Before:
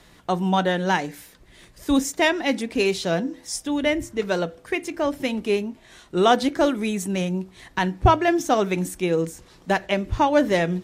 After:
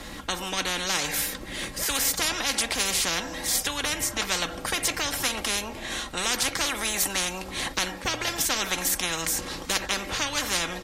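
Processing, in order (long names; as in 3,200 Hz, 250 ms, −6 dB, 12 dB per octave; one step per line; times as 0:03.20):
comb filter 3.7 ms, depth 53%
automatic gain control gain up to 6 dB
every bin compressed towards the loudest bin 10 to 1
level −4.5 dB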